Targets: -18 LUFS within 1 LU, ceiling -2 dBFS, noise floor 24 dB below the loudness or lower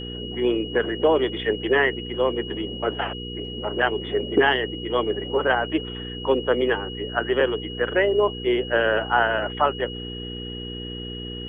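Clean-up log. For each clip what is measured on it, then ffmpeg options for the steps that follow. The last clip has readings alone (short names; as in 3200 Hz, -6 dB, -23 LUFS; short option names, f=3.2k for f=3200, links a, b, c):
hum 60 Hz; harmonics up to 480 Hz; hum level -33 dBFS; steady tone 2900 Hz; tone level -35 dBFS; loudness -23.5 LUFS; peak -6.5 dBFS; loudness target -18.0 LUFS
-> -af "bandreject=f=60:t=h:w=4,bandreject=f=120:t=h:w=4,bandreject=f=180:t=h:w=4,bandreject=f=240:t=h:w=4,bandreject=f=300:t=h:w=4,bandreject=f=360:t=h:w=4,bandreject=f=420:t=h:w=4,bandreject=f=480:t=h:w=4"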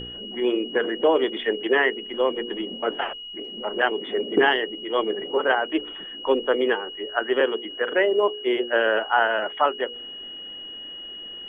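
hum none; steady tone 2900 Hz; tone level -35 dBFS
-> -af "bandreject=f=2.9k:w=30"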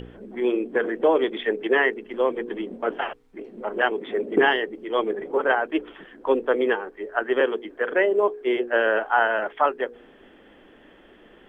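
steady tone none; loudness -24.0 LUFS; peak -7.0 dBFS; loudness target -18.0 LUFS
-> -af "volume=6dB,alimiter=limit=-2dB:level=0:latency=1"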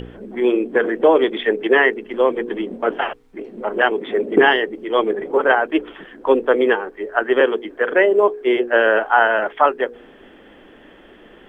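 loudness -18.0 LUFS; peak -2.0 dBFS; noise floor -46 dBFS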